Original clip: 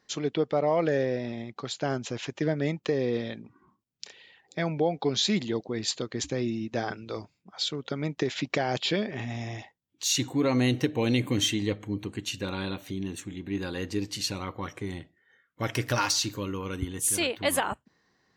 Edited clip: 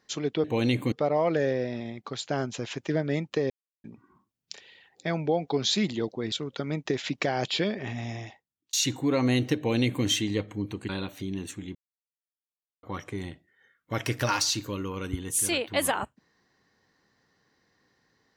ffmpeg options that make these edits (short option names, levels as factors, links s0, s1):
-filter_complex "[0:a]asplit=10[s0][s1][s2][s3][s4][s5][s6][s7][s8][s9];[s0]atrim=end=0.442[s10];[s1]atrim=start=10.888:end=11.372[s11];[s2]atrim=start=0.438:end=3.02,asetpts=PTS-STARTPTS,afade=t=out:st=2.578:d=0.004:c=hsin[s12];[s3]atrim=start=3.02:end=3.36,asetpts=PTS-STARTPTS,volume=0[s13];[s4]atrim=start=3.36:end=5.842,asetpts=PTS-STARTPTS,afade=t=in:d=0.004:c=hsin[s14];[s5]atrim=start=7.638:end=10.05,asetpts=PTS-STARTPTS,afade=t=out:st=1.792:d=0.62[s15];[s6]atrim=start=10.05:end=12.212,asetpts=PTS-STARTPTS,afade=t=in:d=0.004:c=hsin[s16];[s7]atrim=start=12.578:end=13.44,asetpts=PTS-STARTPTS,afade=t=out:st=0.858:d=0.004:c=hsin[s17];[s8]atrim=start=13.44:end=14.52,asetpts=PTS-STARTPTS,volume=0[s18];[s9]atrim=start=14.52,asetpts=PTS-STARTPTS,afade=t=in:d=0.004:c=hsin[s19];[s10][s11]acrossfade=d=0.004:c1=hsin:c2=hsin[s20];[s12][s13][s14]concat=n=3:v=0:a=1[s21];[s20][s21]acrossfade=d=0.004:c1=hsin:c2=hsin[s22];[s15][s16]concat=n=2:v=0:a=1[s23];[s22][s23]acrossfade=d=0.004:c1=hsin:c2=hsin[s24];[s17][s18][s19]concat=n=3:v=0:a=1[s25];[s24][s25]acrossfade=d=0.004:c1=hsin:c2=hsin"